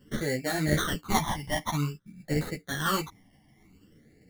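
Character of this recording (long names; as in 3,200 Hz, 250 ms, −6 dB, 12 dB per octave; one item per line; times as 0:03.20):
aliases and images of a low sample rate 2,500 Hz, jitter 0%
phaser sweep stages 12, 0.52 Hz, lowest notch 430–1,100 Hz
tremolo saw down 1.4 Hz, depth 40%
a shimmering, thickened sound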